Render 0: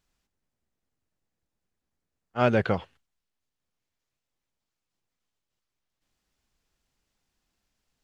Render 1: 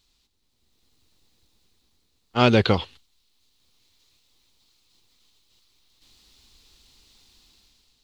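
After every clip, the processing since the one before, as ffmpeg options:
-filter_complex "[0:a]dynaudnorm=f=200:g=7:m=11dB,equalizer=f=160:t=o:w=0.67:g=-7,equalizer=f=630:t=o:w=0.67:g=-8,equalizer=f=1.6k:t=o:w=0.67:g=-8,equalizer=f=4k:t=o:w=0.67:g=12,asplit=2[a][b];[b]acompressor=threshold=-30dB:ratio=6,volume=1.5dB[c];[a][c]amix=inputs=2:normalize=0,volume=1dB"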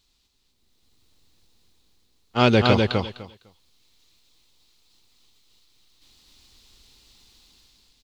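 -af "aecho=1:1:252|504|756:0.668|0.107|0.0171"

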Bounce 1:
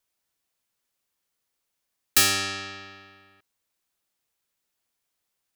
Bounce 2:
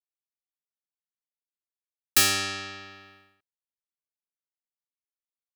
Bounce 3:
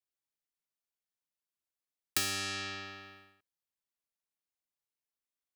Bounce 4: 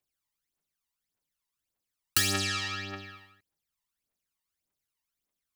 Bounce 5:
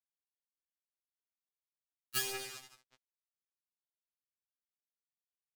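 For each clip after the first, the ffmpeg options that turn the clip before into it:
-af "agate=range=-33dB:threshold=-51dB:ratio=3:detection=peak,volume=-1dB"
-filter_complex "[0:a]acrossover=split=350|1500|7500[a][b][c][d];[a]acompressor=threshold=-45dB:ratio=4[e];[b]acompressor=threshold=-45dB:ratio=4[f];[c]acompressor=threshold=-35dB:ratio=4[g];[d]acompressor=threshold=-36dB:ratio=4[h];[e][f][g][h]amix=inputs=4:normalize=0"
-af "aphaser=in_gain=1:out_gain=1:delay=1.1:decay=0.68:speed=1.7:type=triangular,volume=3.5dB"
-af "acrusher=bits=3:mix=0:aa=0.5,afftfilt=real='re*2.45*eq(mod(b,6),0)':imag='im*2.45*eq(mod(b,6),0)':win_size=2048:overlap=0.75,volume=-7dB"

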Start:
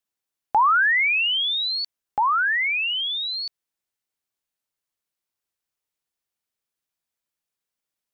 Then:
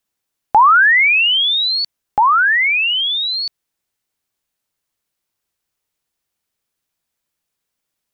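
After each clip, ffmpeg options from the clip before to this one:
-af "lowshelf=f=240:g=4,volume=8dB"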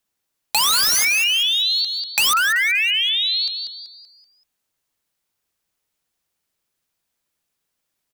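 -filter_complex "[0:a]aeval=exprs='(mod(2.82*val(0)+1,2)-1)/2.82':c=same,asplit=6[a][b][c][d][e][f];[b]adelay=191,afreqshift=120,volume=-8dB[g];[c]adelay=382,afreqshift=240,volume=-16dB[h];[d]adelay=573,afreqshift=360,volume=-23.9dB[i];[e]adelay=764,afreqshift=480,volume=-31.9dB[j];[f]adelay=955,afreqshift=600,volume=-39.8dB[k];[a][g][h][i][j][k]amix=inputs=6:normalize=0,acompressor=threshold=-17dB:ratio=3"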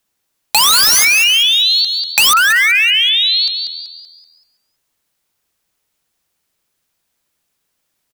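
-af "aecho=1:1:326:0.133,volume=7dB"

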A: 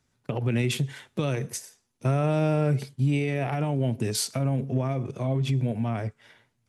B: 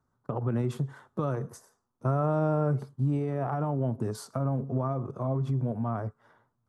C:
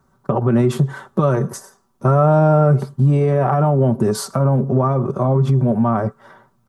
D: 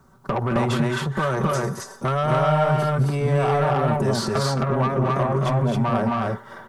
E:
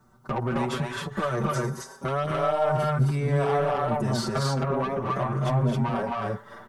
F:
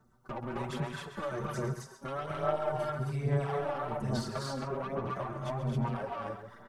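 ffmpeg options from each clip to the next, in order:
-af "highshelf=f=1.7k:t=q:w=3:g=-12,volume=-3.5dB"
-filter_complex "[0:a]aecho=1:1:5.2:0.51,asplit=2[a][b];[b]alimiter=level_in=2dB:limit=-24dB:level=0:latency=1:release=153,volume=-2dB,volume=2.5dB[c];[a][c]amix=inputs=2:normalize=0,volume=8.5dB"
-filter_complex "[0:a]acrossover=split=850|5200[a][b][c];[a]acompressor=threshold=-27dB:ratio=4[d];[b]acompressor=threshold=-26dB:ratio=4[e];[c]acompressor=threshold=-50dB:ratio=4[f];[d][e][f]amix=inputs=3:normalize=0,asoftclip=type=tanh:threshold=-22.5dB,asplit=2[g][h];[h]aecho=0:1:218.7|265.3:0.398|0.891[i];[g][i]amix=inputs=2:normalize=0,volume=5dB"
-filter_complex "[0:a]asplit=2[a][b];[b]adelay=6.3,afreqshift=0.75[c];[a][c]amix=inputs=2:normalize=1,volume=-1.5dB"
-filter_complex "[0:a]asplit=2[a][b];[b]adelay=134.1,volume=-9dB,highshelf=f=4k:g=-3.02[c];[a][c]amix=inputs=2:normalize=0,aphaser=in_gain=1:out_gain=1:delay=3.6:decay=0.45:speed=1.2:type=sinusoidal,tremolo=f=260:d=0.462,volume=-8.5dB"

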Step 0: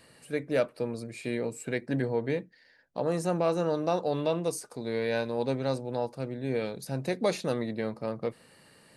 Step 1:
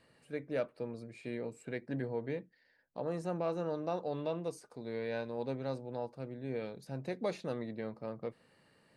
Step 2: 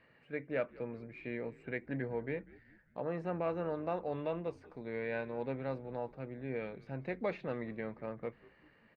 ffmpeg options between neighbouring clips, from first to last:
-af "aemphasis=mode=reproduction:type=50kf,volume=-8dB"
-filter_complex "[0:a]lowpass=f=2.2k:t=q:w=2,asplit=5[a][b][c][d][e];[b]adelay=194,afreqshift=-83,volume=-21.5dB[f];[c]adelay=388,afreqshift=-166,volume=-27.5dB[g];[d]adelay=582,afreqshift=-249,volume=-33.5dB[h];[e]adelay=776,afreqshift=-332,volume=-39.6dB[i];[a][f][g][h][i]amix=inputs=5:normalize=0,volume=-1dB"

